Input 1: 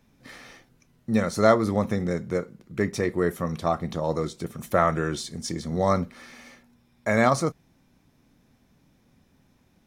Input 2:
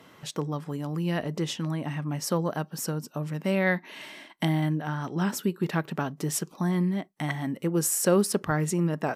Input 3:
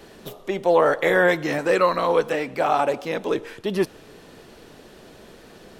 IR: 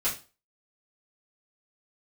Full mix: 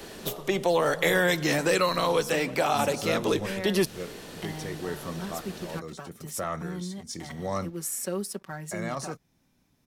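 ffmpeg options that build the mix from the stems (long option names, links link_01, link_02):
-filter_complex "[0:a]acontrast=60,adelay=1650,volume=-13.5dB[link_01];[1:a]highpass=140,aecho=1:1:5.3:0.79,aeval=exprs='sgn(val(0))*max(abs(val(0))-0.00473,0)':channel_layout=same,volume=-13.5dB,asplit=2[link_02][link_03];[2:a]volume=2.5dB[link_04];[link_03]apad=whole_len=507956[link_05];[link_01][link_05]sidechaincompress=threshold=-41dB:ratio=3:attack=20:release=484[link_06];[link_06][link_02][link_04]amix=inputs=3:normalize=0,highshelf=frequency=3500:gain=7,acrossover=split=200|3000[link_07][link_08][link_09];[link_08]acompressor=threshold=-25dB:ratio=3[link_10];[link_07][link_10][link_09]amix=inputs=3:normalize=0"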